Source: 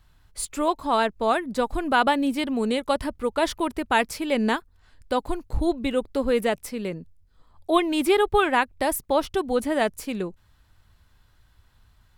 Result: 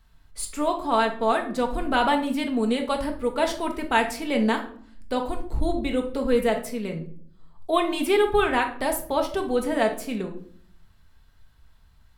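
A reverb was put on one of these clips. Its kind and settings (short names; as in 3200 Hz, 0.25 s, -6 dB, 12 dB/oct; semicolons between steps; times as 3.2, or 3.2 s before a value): shoebox room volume 630 m³, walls furnished, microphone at 1.6 m; gain -2.5 dB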